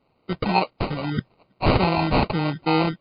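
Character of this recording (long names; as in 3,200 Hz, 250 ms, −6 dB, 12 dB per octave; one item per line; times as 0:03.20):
aliases and images of a low sample rate 1,700 Hz, jitter 0%
MP3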